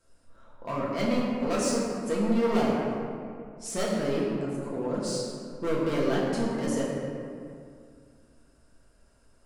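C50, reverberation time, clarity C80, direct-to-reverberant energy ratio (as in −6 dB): −1.0 dB, 2.2 s, 0.5 dB, −6.5 dB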